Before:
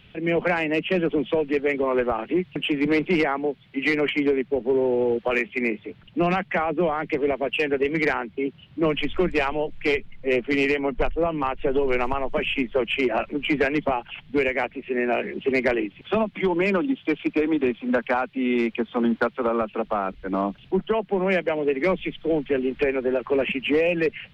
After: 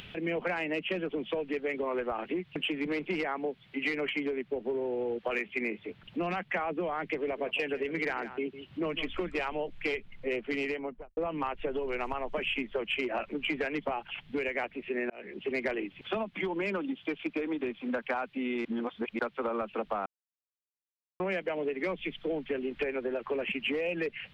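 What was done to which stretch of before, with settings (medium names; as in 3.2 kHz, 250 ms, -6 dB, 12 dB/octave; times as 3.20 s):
7.07–9.41 s: delay 154 ms -16 dB
10.51–11.17 s: studio fade out
15.10–15.62 s: fade in
18.65–19.19 s: reverse
20.06–21.20 s: mute
whole clip: compression 6:1, threshold -25 dBFS; bass shelf 290 Hz -5.5 dB; upward compressor, threshold -37 dBFS; trim -2.5 dB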